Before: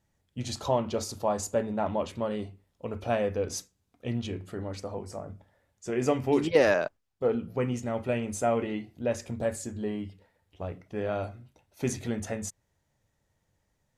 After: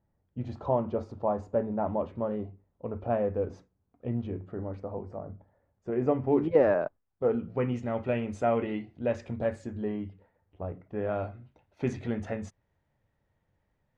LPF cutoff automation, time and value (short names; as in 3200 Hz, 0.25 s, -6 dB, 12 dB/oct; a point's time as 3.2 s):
6.8 s 1100 Hz
7.75 s 2800 Hz
9.38 s 2800 Hz
10.69 s 1200 Hz
11.36 s 2500 Hz